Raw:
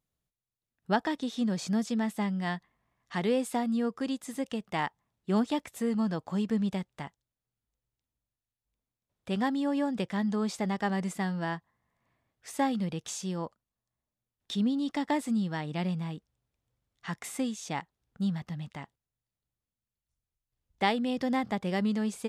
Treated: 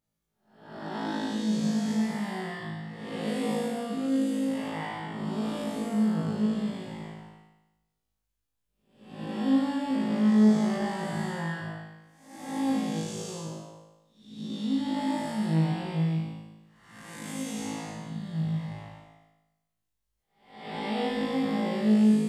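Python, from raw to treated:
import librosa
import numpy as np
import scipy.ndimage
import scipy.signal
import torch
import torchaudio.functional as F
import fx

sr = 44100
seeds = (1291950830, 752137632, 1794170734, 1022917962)

y = fx.spec_blur(x, sr, span_ms=420.0)
y = fx.room_flutter(y, sr, wall_m=3.2, rt60_s=0.98)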